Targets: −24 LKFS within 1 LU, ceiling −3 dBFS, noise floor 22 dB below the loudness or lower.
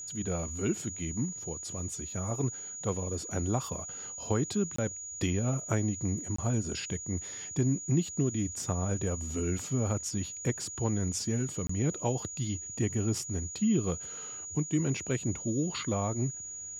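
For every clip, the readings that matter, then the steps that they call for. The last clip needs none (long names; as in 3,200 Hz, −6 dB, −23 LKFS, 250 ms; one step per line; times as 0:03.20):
number of dropouts 3; longest dropout 24 ms; interfering tone 6,800 Hz; level of the tone −39 dBFS; integrated loudness −32.0 LKFS; sample peak −13.5 dBFS; target loudness −24.0 LKFS
→ repair the gap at 0:04.76/0:06.36/0:11.67, 24 ms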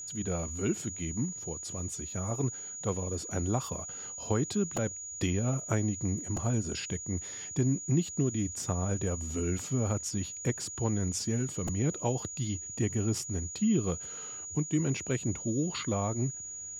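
number of dropouts 0; interfering tone 6,800 Hz; level of the tone −39 dBFS
→ notch filter 6,800 Hz, Q 30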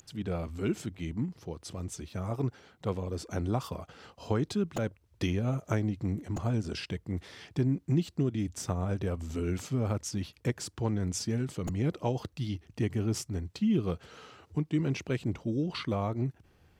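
interfering tone none found; integrated loudness −33.0 LKFS; sample peak −14.0 dBFS; target loudness −24.0 LKFS
→ level +9 dB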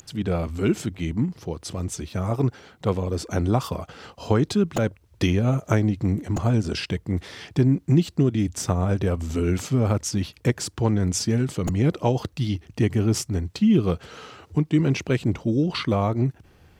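integrated loudness −24.0 LKFS; sample peak −5.0 dBFS; background noise floor −57 dBFS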